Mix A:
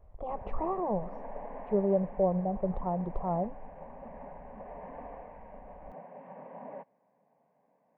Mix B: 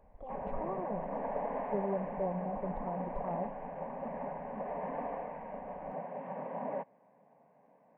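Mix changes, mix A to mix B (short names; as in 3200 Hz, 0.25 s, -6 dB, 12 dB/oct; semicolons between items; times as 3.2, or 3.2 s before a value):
speech -8.0 dB; background +6.5 dB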